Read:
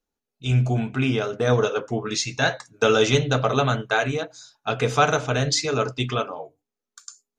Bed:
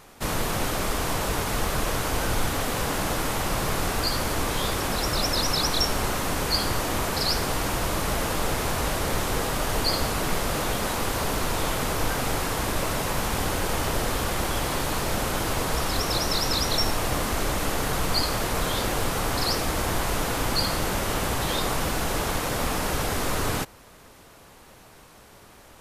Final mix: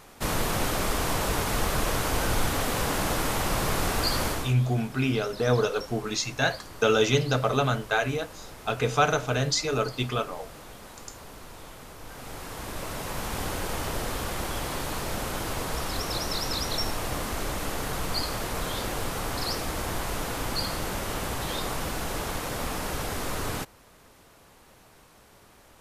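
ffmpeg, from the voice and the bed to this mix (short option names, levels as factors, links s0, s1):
-filter_complex "[0:a]adelay=4000,volume=0.668[s0];[1:a]volume=4.47,afade=t=out:st=4.26:d=0.28:silence=0.125893,afade=t=in:st=12.02:d=1.41:silence=0.211349[s1];[s0][s1]amix=inputs=2:normalize=0"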